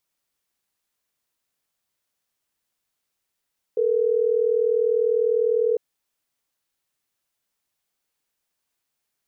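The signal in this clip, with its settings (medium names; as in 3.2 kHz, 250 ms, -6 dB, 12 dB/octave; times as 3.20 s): call progress tone ringback tone, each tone -20.5 dBFS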